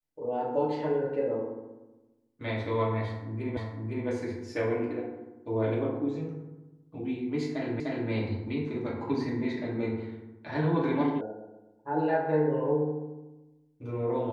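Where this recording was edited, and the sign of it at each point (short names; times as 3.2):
3.57 repeat of the last 0.51 s
7.8 repeat of the last 0.3 s
11.21 sound cut off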